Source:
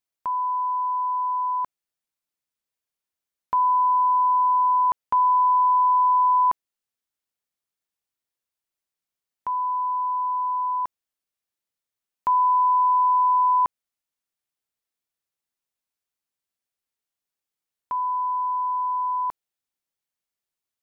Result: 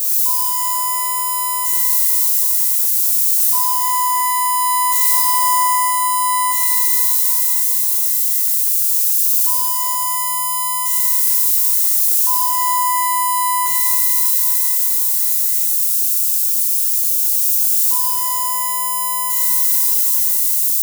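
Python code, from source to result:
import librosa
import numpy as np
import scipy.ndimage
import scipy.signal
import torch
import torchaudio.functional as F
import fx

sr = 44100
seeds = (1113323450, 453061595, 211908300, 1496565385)

y = x + 0.5 * 10.0 ** (-21.5 / 20.0) * np.diff(np.sign(x), prepend=np.sign(x[:1]))
y = fx.bass_treble(y, sr, bass_db=-3, treble_db=15)
y = fx.rider(y, sr, range_db=4, speed_s=2.0)
y = fx.rev_shimmer(y, sr, seeds[0], rt60_s=3.3, semitones=12, shimmer_db=-8, drr_db=-6.5)
y = y * 10.0 ** (-10.5 / 20.0)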